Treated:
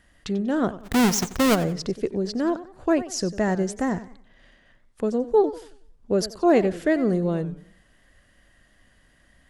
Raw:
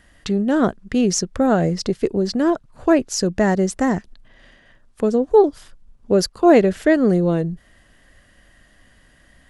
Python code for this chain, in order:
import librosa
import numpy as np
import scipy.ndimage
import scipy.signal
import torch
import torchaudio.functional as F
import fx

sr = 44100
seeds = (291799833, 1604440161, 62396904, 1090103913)

y = fx.halfwave_hold(x, sr, at=(0.78, 1.54), fade=0.02)
y = fx.echo_warbled(y, sr, ms=92, feedback_pct=34, rate_hz=2.8, cents=173, wet_db=-15)
y = F.gain(torch.from_numpy(y), -6.0).numpy()